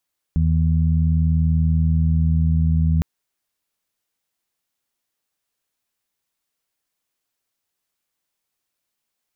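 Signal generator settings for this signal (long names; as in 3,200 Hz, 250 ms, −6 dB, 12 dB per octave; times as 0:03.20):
steady harmonic partials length 2.66 s, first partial 80.4 Hz, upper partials −2/−15 dB, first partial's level −16.5 dB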